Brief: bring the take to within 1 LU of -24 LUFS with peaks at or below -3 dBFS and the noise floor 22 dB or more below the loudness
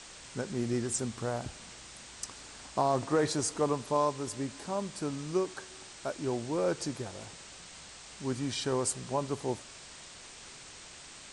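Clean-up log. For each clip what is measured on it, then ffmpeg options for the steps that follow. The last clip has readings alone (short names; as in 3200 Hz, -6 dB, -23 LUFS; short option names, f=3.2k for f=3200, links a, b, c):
noise floor -50 dBFS; noise floor target -56 dBFS; loudness -33.5 LUFS; peak -15.5 dBFS; loudness target -24.0 LUFS
-> -af "afftdn=nr=6:nf=-50"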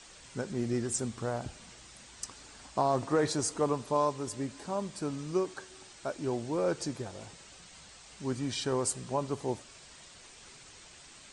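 noise floor -53 dBFS; noise floor target -56 dBFS
-> -af "afftdn=nr=6:nf=-53"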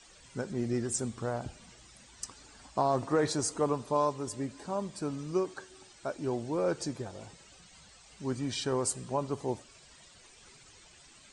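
noise floor -57 dBFS; loudness -33.5 LUFS; peak -15.5 dBFS; loudness target -24.0 LUFS
-> -af "volume=9.5dB"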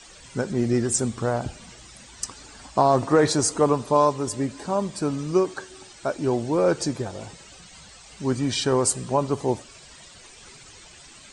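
loudness -24.0 LUFS; peak -6.0 dBFS; noise floor -48 dBFS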